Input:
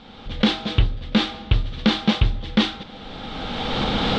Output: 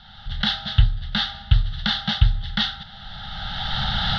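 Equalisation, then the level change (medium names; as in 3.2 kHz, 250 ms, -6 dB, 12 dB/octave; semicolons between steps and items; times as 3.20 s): Chebyshev band-stop 150–1000 Hz, order 2; static phaser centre 1.6 kHz, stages 8; +3.5 dB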